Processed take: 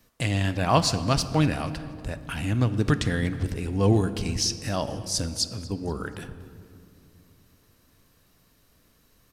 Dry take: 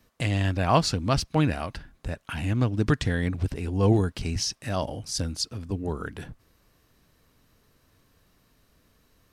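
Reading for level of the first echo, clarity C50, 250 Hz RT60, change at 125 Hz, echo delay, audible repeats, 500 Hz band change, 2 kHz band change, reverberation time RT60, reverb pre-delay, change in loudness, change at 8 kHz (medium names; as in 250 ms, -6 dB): -21.5 dB, 12.5 dB, 3.7 s, +0.5 dB, 239 ms, 2, +0.5 dB, +1.0 dB, 2.5 s, 4 ms, +1.0 dB, +4.0 dB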